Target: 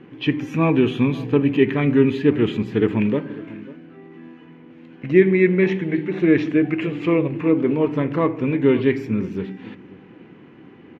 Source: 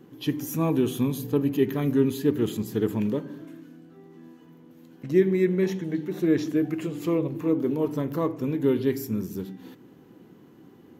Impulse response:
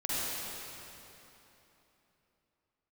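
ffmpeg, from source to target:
-filter_complex "[0:a]lowpass=f=2.4k:t=q:w=3.1,asplit=2[a][b];[b]adelay=542.3,volume=-19dB,highshelf=f=4k:g=-12.2[c];[a][c]amix=inputs=2:normalize=0,volume=6dB"

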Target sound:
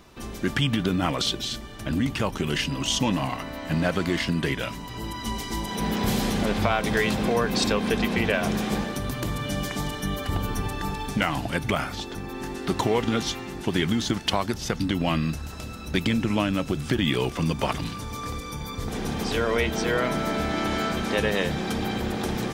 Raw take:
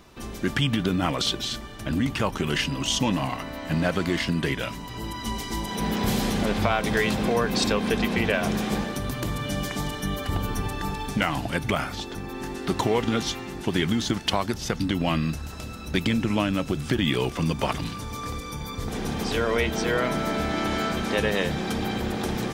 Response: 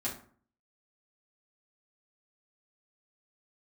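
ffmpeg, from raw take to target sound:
-filter_complex "[0:a]asplit=3[a][b][c];[a]afade=t=out:st=1.25:d=0.02[d];[b]adynamicequalizer=threshold=0.00708:dfrequency=1200:dqfactor=0.85:tfrequency=1200:tqfactor=0.85:attack=5:release=100:ratio=0.375:range=2:mode=cutabove:tftype=bell,afade=t=in:st=1.25:d=0.02,afade=t=out:st=2.69:d=0.02[e];[c]afade=t=in:st=2.69:d=0.02[f];[d][e][f]amix=inputs=3:normalize=0"

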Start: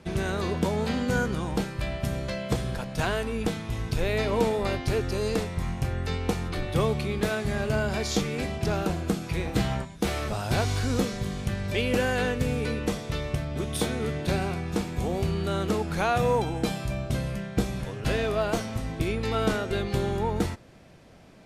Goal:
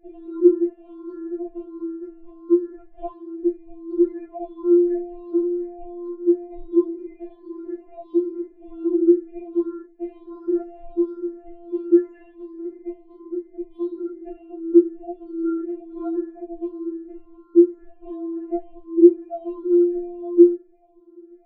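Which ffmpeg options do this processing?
-af "afftfilt=real='re*pow(10,23/40*sin(2*PI*(0.51*log(max(b,1)*sr/1024/100)/log(2)-(1.4)*(pts-256)/sr)))':imag='im*pow(10,23/40*sin(2*PI*(0.51*log(max(b,1)*sr/1024/100)/log(2)-(1.4)*(pts-256)/sr)))':win_size=1024:overlap=0.75,lowpass=f=400:t=q:w=4.9,afftfilt=real='re*4*eq(mod(b,16),0)':imag='im*4*eq(mod(b,16),0)':win_size=2048:overlap=0.75,volume=-2.5dB"

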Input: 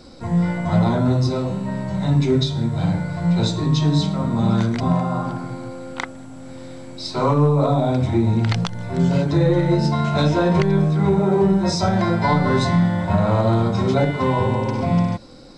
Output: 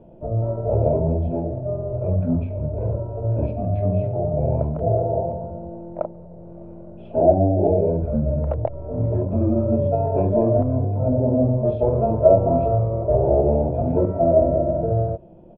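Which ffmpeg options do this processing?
-af "asetrate=28595,aresample=44100,atempo=1.54221,lowpass=f=620:t=q:w=6.7,volume=-4.5dB"

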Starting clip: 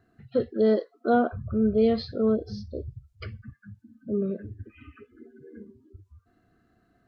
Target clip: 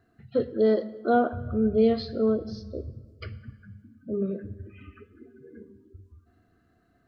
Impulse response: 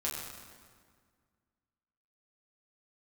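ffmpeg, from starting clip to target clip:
-filter_complex "[0:a]bandreject=f=51.23:t=h:w=4,bandreject=f=102.46:t=h:w=4,bandreject=f=153.69:t=h:w=4,bandreject=f=204.92:t=h:w=4,bandreject=f=256.15:t=h:w=4,bandreject=f=307.38:t=h:w=4,asplit=2[a][b];[1:a]atrim=start_sample=2205,asetrate=52920,aresample=44100[c];[b][c]afir=irnorm=-1:irlink=0,volume=-13.5dB[d];[a][d]amix=inputs=2:normalize=0,volume=-1.5dB"

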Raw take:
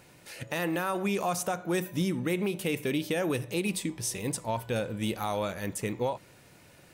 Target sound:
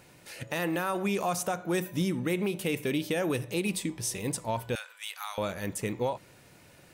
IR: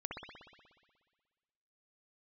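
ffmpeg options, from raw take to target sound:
-filter_complex "[0:a]asettb=1/sr,asplit=3[a][b][c];[a]atrim=end=4.754[d];[b]atrim=start=4.75:end=5.38,asetpts=PTS-STARTPTS,afade=t=in:d=0.004:c=qsin,afade=t=out:st=0.626:d=0.004:c=qsin,highpass=f=1.1k:w=0.5412,highpass=f=1.1k:w=1.3066[e];[c]atrim=start=5.376[f];[d][e]acrossfade=d=0.004:c1=hsin:c2=qsin[g];[g][f]acrossfade=d=0.004:c1=qsin:c2=hsin"

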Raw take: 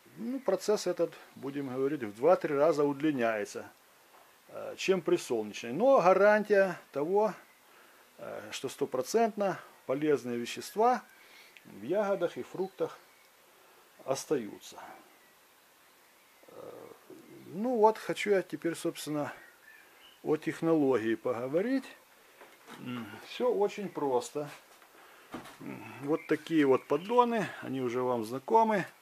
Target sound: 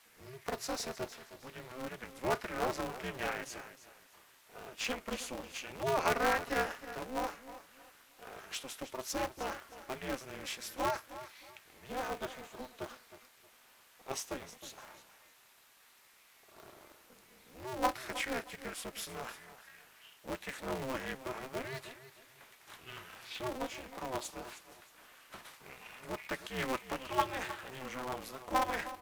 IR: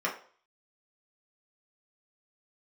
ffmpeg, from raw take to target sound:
-filter_complex "[0:a]highpass=f=1.5k:p=1,asplit=2[a][b];[b]aecho=0:1:313|626|939:0.2|0.0559|0.0156[c];[a][c]amix=inputs=2:normalize=0,aeval=exprs='val(0)*sgn(sin(2*PI*130*n/s))':c=same"

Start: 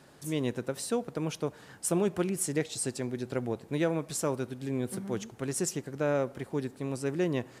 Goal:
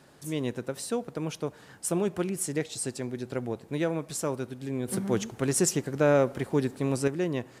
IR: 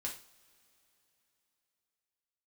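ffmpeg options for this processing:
-filter_complex "[0:a]asettb=1/sr,asplit=3[a][b][c];[a]atrim=end=4.884[d];[b]atrim=start=4.88:end=7.08,asetpts=PTS-STARTPTS,afade=t=in:d=0.004:c=qsin,afade=t=out:st=2.196:d=0.004:c=qsin,acontrast=68[e];[c]atrim=start=7.076[f];[d][e]acrossfade=d=0.004:c1=hsin:c2=qsin[g];[g][f]acrossfade=d=0.004:c1=qsin:c2=hsin"

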